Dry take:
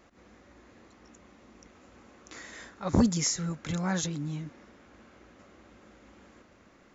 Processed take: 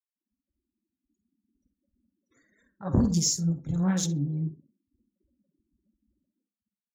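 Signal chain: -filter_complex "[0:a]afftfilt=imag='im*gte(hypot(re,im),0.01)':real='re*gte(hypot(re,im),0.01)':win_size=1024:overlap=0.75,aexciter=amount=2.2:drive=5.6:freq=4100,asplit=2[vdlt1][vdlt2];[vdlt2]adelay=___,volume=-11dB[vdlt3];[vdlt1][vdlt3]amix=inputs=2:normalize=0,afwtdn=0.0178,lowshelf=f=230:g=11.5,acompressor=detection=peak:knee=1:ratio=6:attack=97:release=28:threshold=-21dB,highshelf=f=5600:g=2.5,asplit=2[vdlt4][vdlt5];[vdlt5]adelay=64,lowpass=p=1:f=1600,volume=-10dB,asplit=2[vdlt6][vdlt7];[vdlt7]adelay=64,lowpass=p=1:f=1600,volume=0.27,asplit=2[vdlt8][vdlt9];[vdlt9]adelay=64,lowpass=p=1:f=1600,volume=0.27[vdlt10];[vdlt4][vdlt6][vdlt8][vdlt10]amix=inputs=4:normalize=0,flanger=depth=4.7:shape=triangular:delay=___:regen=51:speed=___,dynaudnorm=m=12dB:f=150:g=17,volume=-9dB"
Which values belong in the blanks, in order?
49, 3.6, 1.5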